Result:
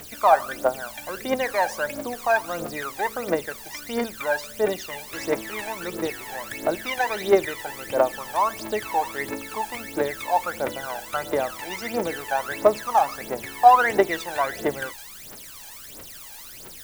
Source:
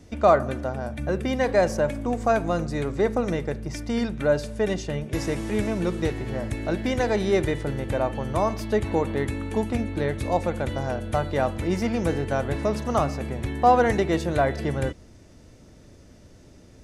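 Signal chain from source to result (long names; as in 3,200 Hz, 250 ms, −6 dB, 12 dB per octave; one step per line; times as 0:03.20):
high-pass filter 640 Hz 12 dB per octave
high-shelf EQ 3,800 Hz −9 dB
in parallel at −9.5 dB: bit-depth reduction 6 bits, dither triangular
on the sum: phase shifter 1.5 Hz, delay 1.3 ms, feedback 78%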